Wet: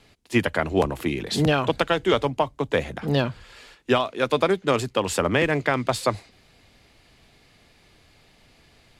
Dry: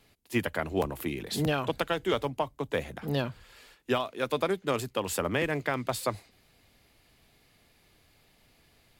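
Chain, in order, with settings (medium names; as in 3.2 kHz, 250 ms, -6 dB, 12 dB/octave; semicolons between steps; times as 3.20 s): low-pass 8.1 kHz 12 dB/octave; trim +7.5 dB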